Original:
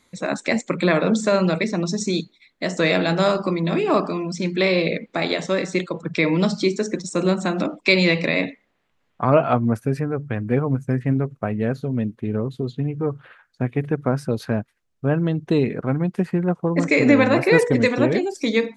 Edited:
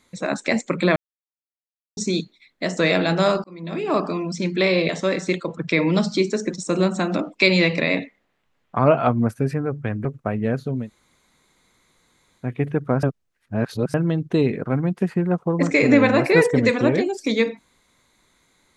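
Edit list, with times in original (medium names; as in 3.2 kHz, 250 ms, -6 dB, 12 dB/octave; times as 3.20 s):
0.96–1.97 s: mute
3.44–4.10 s: fade in
4.89–5.35 s: delete
10.51–11.22 s: delete
11.99–13.62 s: room tone, crossfade 0.16 s
14.20–15.11 s: reverse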